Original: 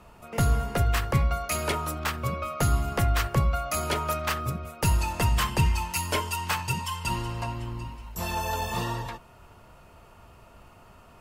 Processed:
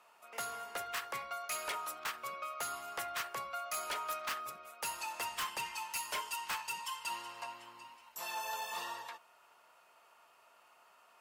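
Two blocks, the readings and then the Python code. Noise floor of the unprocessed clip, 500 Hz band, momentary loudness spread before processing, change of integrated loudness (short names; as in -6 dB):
-53 dBFS, -14.5 dB, 9 LU, -12.0 dB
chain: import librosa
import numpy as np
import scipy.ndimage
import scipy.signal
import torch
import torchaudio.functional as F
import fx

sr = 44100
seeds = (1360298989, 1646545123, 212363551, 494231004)

y = scipy.signal.sosfilt(scipy.signal.butter(2, 800.0, 'highpass', fs=sr, output='sos'), x)
y = np.clip(10.0 ** (25.5 / 20.0) * y, -1.0, 1.0) / 10.0 ** (25.5 / 20.0)
y = F.gain(torch.from_numpy(y), -7.0).numpy()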